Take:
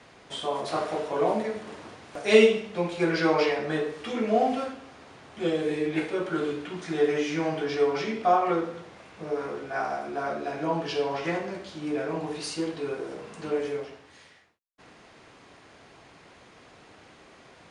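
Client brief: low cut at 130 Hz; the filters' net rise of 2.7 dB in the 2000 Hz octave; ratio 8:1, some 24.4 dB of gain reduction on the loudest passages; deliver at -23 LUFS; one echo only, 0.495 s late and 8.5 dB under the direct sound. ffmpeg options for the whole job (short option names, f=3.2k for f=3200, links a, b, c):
-af "highpass=130,equalizer=f=2k:t=o:g=3.5,acompressor=threshold=-38dB:ratio=8,aecho=1:1:495:0.376,volume=19dB"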